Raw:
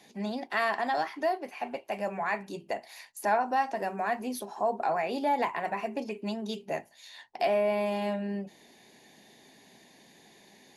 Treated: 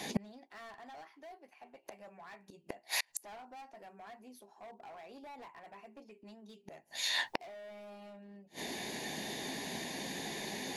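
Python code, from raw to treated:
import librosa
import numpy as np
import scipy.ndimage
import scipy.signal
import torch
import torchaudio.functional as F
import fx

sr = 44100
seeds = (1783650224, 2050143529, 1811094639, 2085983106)

y = fx.chorus_voices(x, sr, voices=6, hz=0.75, base_ms=13, depth_ms=2.0, mix_pct=20)
y = np.clip(10.0 ** (29.5 / 20.0) * y, -1.0, 1.0) / 10.0 ** (29.5 / 20.0)
y = fx.gate_flip(y, sr, shuts_db=-37.0, range_db=-35)
y = y * 10.0 ** (17.5 / 20.0)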